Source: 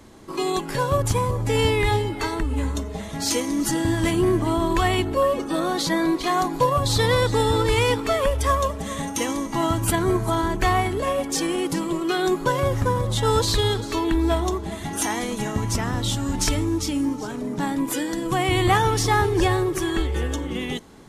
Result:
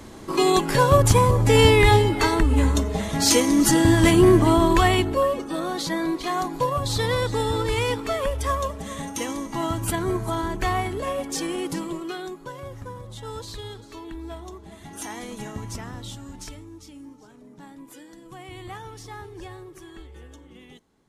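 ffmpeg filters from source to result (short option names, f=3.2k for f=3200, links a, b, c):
-af "volume=13dB,afade=t=out:st=4.42:d=1.01:silence=0.334965,afade=t=out:st=11.78:d=0.56:silence=0.266073,afade=t=in:st=14.47:d=0.93:silence=0.421697,afade=t=out:st=15.4:d=1.24:silence=0.266073"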